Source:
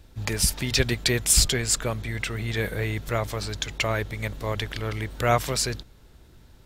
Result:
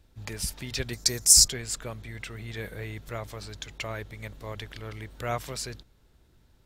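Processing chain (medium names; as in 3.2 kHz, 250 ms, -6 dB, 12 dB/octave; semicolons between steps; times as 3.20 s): 0.93–1.48 s: resonant high shelf 4.2 kHz +10 dB, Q 3; trim -9.5 dB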